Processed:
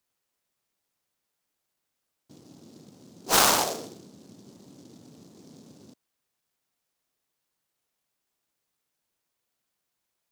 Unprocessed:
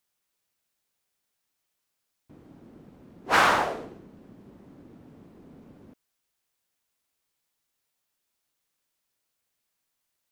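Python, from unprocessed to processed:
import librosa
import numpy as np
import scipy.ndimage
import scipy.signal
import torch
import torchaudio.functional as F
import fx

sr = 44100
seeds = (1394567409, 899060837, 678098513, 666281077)

y = scipy.signal.sosfilt(scipy.signal.butter(4, 100.0, 'highpass', fs=sr, output='sos'), x)
y = fx.noise_mod_delay(y, sr, seeds[0], noise_hz=5100.0, depth_ms=0.13)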